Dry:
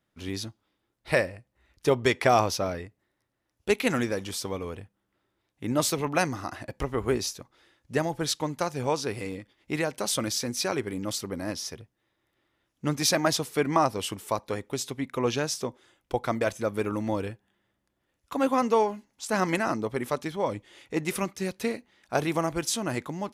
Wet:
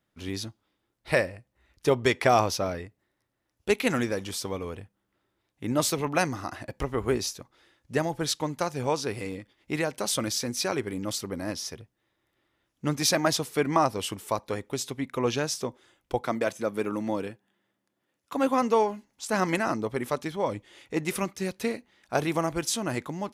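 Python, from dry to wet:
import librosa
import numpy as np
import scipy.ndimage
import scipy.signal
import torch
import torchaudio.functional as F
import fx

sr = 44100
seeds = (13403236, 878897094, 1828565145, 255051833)

y = fx.cheby1_highpass(x, sr, hz=180.0, order=2, at=(16.21, 18.34))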